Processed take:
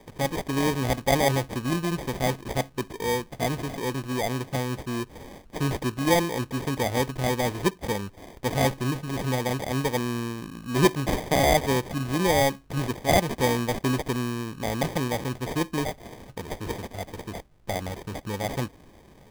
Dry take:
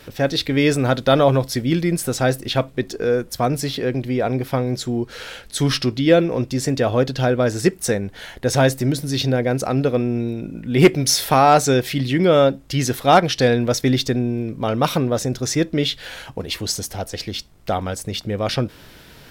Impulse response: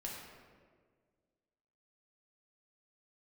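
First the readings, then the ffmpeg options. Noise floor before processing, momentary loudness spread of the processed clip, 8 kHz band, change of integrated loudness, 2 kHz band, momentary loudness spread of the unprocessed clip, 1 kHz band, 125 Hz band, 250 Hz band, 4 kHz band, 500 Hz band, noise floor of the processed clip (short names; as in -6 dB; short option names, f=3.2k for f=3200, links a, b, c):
-45 dBFS, 12 LU, -8.0 dB, -7.5 dB, -4.5 dB, 11 LU, -6.5 dB, -7.0 dB, -7.5 dB, -8.5 dB, -8.5 dB, -53 dBFS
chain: -af "acrusher=samples=32:mix=1:aa=0.000001,volume=-7.5dB"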